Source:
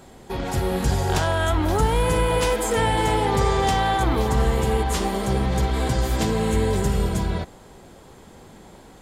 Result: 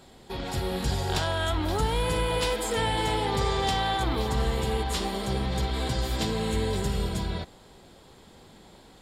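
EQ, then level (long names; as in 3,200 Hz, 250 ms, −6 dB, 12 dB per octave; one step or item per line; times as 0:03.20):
parametric band 3,900 Hz +8 dB 1 octave
notch filter 6,200 Hz, Q 12
−6.5 dB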